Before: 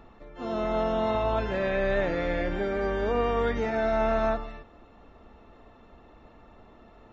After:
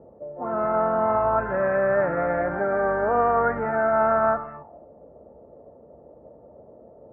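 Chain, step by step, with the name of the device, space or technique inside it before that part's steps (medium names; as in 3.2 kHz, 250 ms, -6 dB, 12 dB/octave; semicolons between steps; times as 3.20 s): envelope filter bass rig (touch-sensitive low-pass 470–1400 Hz up, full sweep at -29.5 dBFS; cabinet simulation 63–2300 Hz, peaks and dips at 150 Hz +8 dB, 590 Hz +6 dB, 880 Hz +4 dB); 2.17–3.58 s: peaking EQ 710 Hz +7 dB 0.42 oct; trim -1.5 dB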